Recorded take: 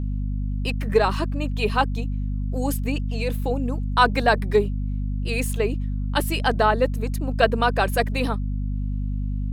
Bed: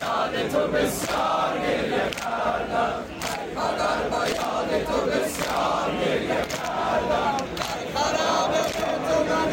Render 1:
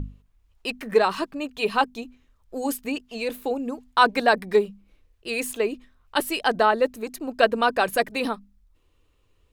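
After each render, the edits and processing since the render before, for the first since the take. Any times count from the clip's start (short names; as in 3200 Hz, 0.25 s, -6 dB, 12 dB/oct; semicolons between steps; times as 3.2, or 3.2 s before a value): notches 50/100/150/200/250 Hz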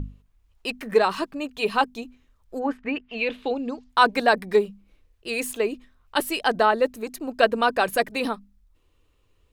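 2.58–3.88 synth low-pass 1400 Hz -> 5500 Hz, resonance Q 2.4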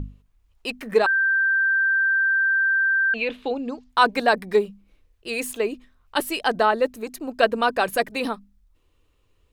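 1.06–3.14 bleep 1570 Hz -17 dBFS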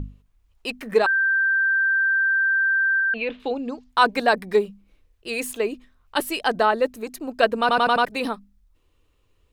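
3–3.4 air absorption 170 m; 7.6 stutter in place 0.09 s, 5 plays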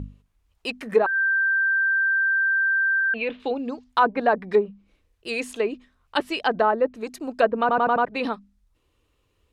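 HPF 54 Hz 6 dB/oct; treble ducked by the level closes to 1300 Hz, closed at -16 dBFS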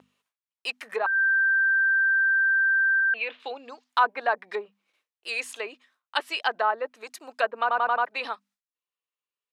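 gate with hold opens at -53 dBFS; HPF 870 Hz 12 dB/oct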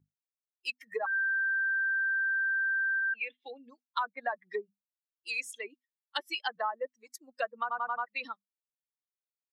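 per-bin expansion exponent 2; compressor 5:1, threshold -29 dBFS, peak gain reduction 11.5 dB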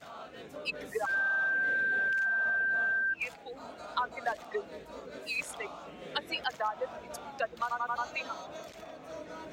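add bed -21.5 dB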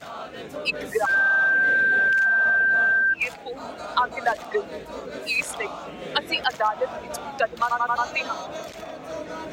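gain +10 dB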